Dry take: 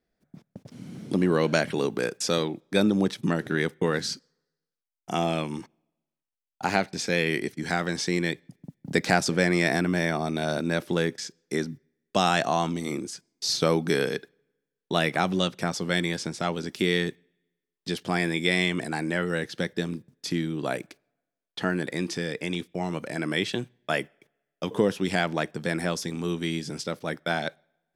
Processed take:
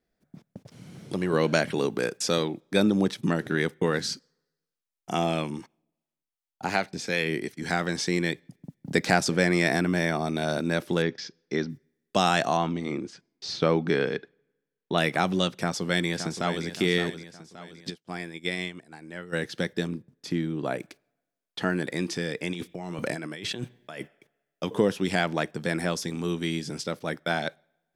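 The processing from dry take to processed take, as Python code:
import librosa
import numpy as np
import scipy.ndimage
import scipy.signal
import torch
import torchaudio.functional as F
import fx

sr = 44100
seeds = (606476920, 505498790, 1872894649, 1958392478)

y = fx.peak_eq(x, sr, hz=250.0, db=-10.5, octaves=0.87, at=(0.65, 1.33))
y = fx.harmonic_tremolo(y, sr, hz=2.7, depth_pct=50, crossover_hz=610.0, at=(5.5, 7.62))
y = fx.steep_lowpass(y, sr, hz=5500.0, slope=36, at=(11.02, 11.7))
y = fx.lowpass(y, sr, hz=3300.0, slope=12, at=(12.57, 14.98))
y = fx.echo_throw(y, sr, start_s=15.56, length_s=1.1, ms=570, feedback_pct=45, wet_db=-10.0)
y = fx.upward_expand(y, sr, threshold_db=-41.0, expansion=2.5, at=(17.89, 19.32), fade=0.02)
y = fx.high_shelf(y, sr, hz=2600.0, db=-8.5, at=(19.87, 20.8))
y = fx.over_compress(y, sr, threshold_db=-36.0, ratio=-1.0, at=(22.52, 24.0), fade=0.02)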